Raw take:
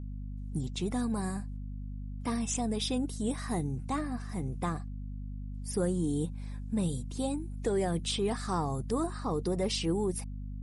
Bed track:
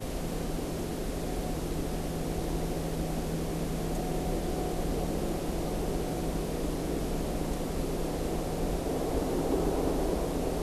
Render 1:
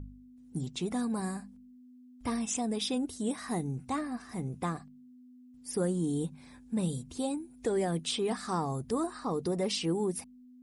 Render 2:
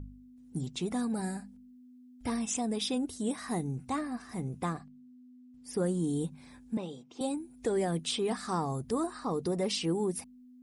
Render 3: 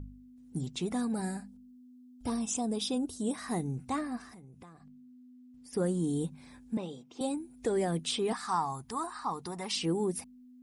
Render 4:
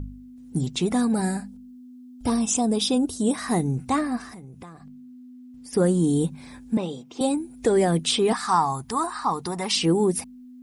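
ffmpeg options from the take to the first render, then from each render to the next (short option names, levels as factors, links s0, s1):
-af "bandreject=f=50:t=h:w=4,bandreject=f=100:t=h:w=4,bandreject=f=150:t=h:w=4,bandreject=f=200:t=h:w=4"
-filter_complex "[0:a]asettb=1/sr,asplit=3[s0][s1][s2];[s0]atrim=end=1.134[s3];[s1]atrim=start=1.13:end=2.3,asetpts=PTS-STARTPTS,afade=t=in:d=0.004:c=qsin,afade=t=out:st=1.166:d=0.004:c=qsin,asuperstop=centerf=1100:order=12:qfactor=5[s4];[s2]atrim=start=2.296[s5];[s3][s4]acrossfade=d=0.004:c1=hsin:c2=qsin[s6];[s6][s5]acrossfade=d=0.004:c1=qsin:c2=hsin,asettb=1/sr,asplit=3[s7][s8][s9];[s7]atrim=end=4.734[s10];[s8]atrim=start=4.73:end=5.86,asetpts=PTS-STARTPTS,afade=t=in:d=0.004:c=qsin,afade=t=out:st=1.126:d=0.004:c=qsin,highshelf=f=7900:g=-9[s11];[s9]atrim=start=5.856[s12];[s10][s11]acrossfade=d=0.004:c1=hsin:c2=qsin[s13];[s13][s12]acrossfade=d=0.004:c1=qsin:c2=hsin,asettb=1/sr,asplit=3[s14][s15][s16];[s14]atrim=end=6.774[s17];[s15]atrim=start=6.77:end=7.21,asetpts=PTS-STARTPTS,afade=t=in:d=0.004:c=qsin,afade=t=out:st=0.436:d=0.004:c=qsin,highpass=350,equalizer=f=810:t=q:w=4:g=4,equalizer=f=1700:t=q:w=4:g=-7,equalizer=f=4300:t=q:w=4:g=-10,lowpass=f=5200:w=0.5412,lowpass=f=5200:w=1.3066[s18];[s16]atrim=start=7.206[s19];[s17][s18]acrossfade=d=0.004:c1=hsin:c2=qsin[s20];[s20][s19]acrossfade=d=0.004:c1=qsin:c2=hsin"
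-filter_complex "[0:a]asettb=1/sr,asplit=3[s0][s1][s2];[s0]atrim=end=1.484[s3];[s1]atrim=start=1.48:end=3.34,asetpts=PTS-STARTPTS,afade=t=in:d=0.004:c=qsin,afade=t=out:st=1.856:d=0.004:c=qsin,equalizer=f=2000:t=o:w=0.62:g=-11.5[s4];[s2]atrim=start=3.336[s5];[s3][s4]acrossfade=d=0.004:c1=hsin:c2=qsin[s6];[s6][s5]acrossfade=d=0.004:c1=qsin:c2=hsin,asettb=1/sr,asplit=3[s7][s8][s9];[s7]atrim=end=4.284[s10];[s8]atrim=start=4.28:end=5.73,asetpts=PTS-STARTPTS,afade=t=in:d=0.004:c=qsin,afade=t=out:st=1.446:d=0.004:c=qsin,acompressor=threshold=0.00355:ratio=8:attack=3.2:release=140:knee=1:detection=peak[s11];[s9]atrim=start=5.726[s12];[s10][s11]acrossfade=d=0.004:c1=hsin:c2=qsin[s13];[s13][s12]acrossfade=d=0.004:c1=qsin:c2=hsin,asettb=1/sr,asplit=3[s14][s15][s16];[s14]atrim=end=8.334[s17];[s15]atrim=start=8.33:end=9.76,asetpts=PTS-STARTPTS,afade=t=in:d=0.004:c=qsin,afade=t=out:st=1.426:d=0.004:c=qsin,lowshelf=f=690:t=q:w=3:g=-7.5[s18];[s16]atrim=start=9.756[s19];[s17][s18]acrossfade=d=0.004:c1=hsin:c2=qsin[s20];[s20][s19]acrossfade=d=0.004:c1=qsin:c2=hsin"
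-af "volume=3.16"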